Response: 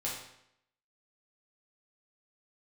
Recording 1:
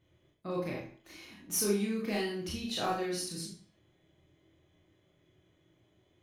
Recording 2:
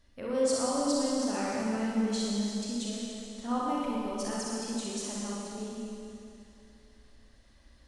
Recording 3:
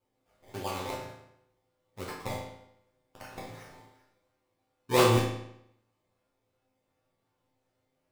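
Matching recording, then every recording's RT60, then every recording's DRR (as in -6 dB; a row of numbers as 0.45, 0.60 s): 3; 0.45, 2.8, 0.75 s; -4.0, -5.5, -5.5 dB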